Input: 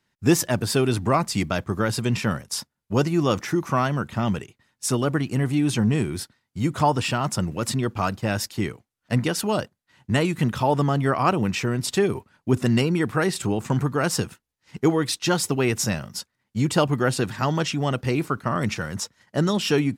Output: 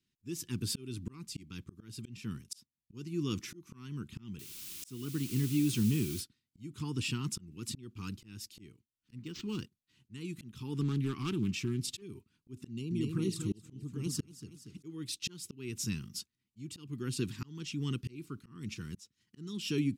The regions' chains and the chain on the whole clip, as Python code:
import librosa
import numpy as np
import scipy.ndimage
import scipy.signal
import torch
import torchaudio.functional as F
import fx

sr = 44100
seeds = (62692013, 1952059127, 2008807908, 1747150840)

y = fx.chain(x, sr, fx.highpass(hz=53.0, slope=24),
    fx.quant_dither(seeds[0], bits=6, dither='triangular'), at=(4.39, 6.21))
y = fx.chain(y, sr, fx.law_mismatch(coded='A'),
    fx.resample_linear(factor=4), at=(9.22, 9.62))
y = fx.chain(y, sr, fx.notch_comb(f0_hz=490.0),
    fx.clip_hard(threshold_db=-16.5),
    fx.doppler_dist(depth_ms=0.26), at=(10.81, 12.02))
y = fx.chain(y, sr, fx.peak_eq(hz=2700.0, db=-3.5, octaves=0.72),
    fx.env_flanger(rest_ms=7.2, full_db=-18.0),
    fx.echo_feedback(ms=236, feedback_pct=32, wet_db=-7.0), at=(12.67, 14.83))
y = scipy.signal.sosfilt(scipy.signal.cheby1(2, 1.0, [340.0, 1100.0], 'bandstop', fs=sr, output='sos'), y)
y = fx.band_shelf(y, sr, hz=1200.0, db=-12.5, octaves=1.7)
y = fx.auto_swell(y, sr, attack_ms=466.0)
y = y * 10.0 ** (-7.5 / 20.0)